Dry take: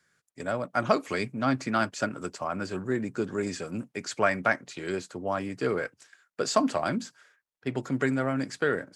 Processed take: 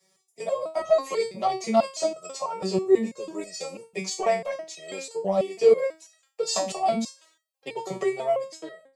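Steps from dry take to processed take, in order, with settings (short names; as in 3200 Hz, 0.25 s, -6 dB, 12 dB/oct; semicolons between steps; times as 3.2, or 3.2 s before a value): ending faded out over 0.96 s; steep high-pass 150 Hz 48 dB/oct; bell 270 Hz +3 dB 2.9 oct; fixed phaser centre 630 Hz, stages 4; soft clip -14 dBFS, distortion -21 dB; maximiser +21 dB; stepped resonator 6.1 Hz 190–640 Hz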